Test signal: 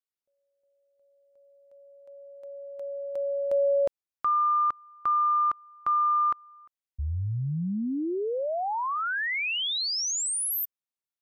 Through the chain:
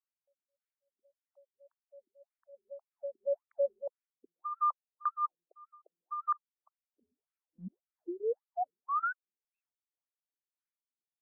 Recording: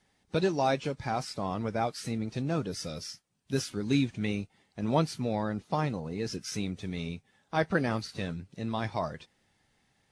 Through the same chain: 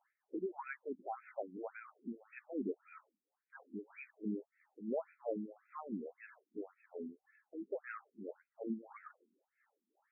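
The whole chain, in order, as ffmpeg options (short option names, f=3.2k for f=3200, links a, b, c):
-af "tremolo=f=3:d=0.83,alimiter=level_in=1dB:limit=-24dB:level=0:latency=1:release=136,volume=-1dB,bass=f=250:g=-1,treble=f=4k:g=-14,afftfilt=real='re*between(b*sr/1024,270*pow(1900/270,0.5+0.5*sin(2*PI*1.8*pts/sr))/1.41,270*pow(1900/270,0.5+0.5*sin(2*PI*1.8*pts/sr))*1.41)':imag='im*between(b*sr/1024,270*pow(1900/270,0.5+0.5*sin(2*PI*1.8*pts/sr))/1.41,270*pow(1900/270,0.5+0.5*sin(2*PI*1.8*pts/sr))*1.41)':win_size=1024:overlap=0.75,volume=2dB"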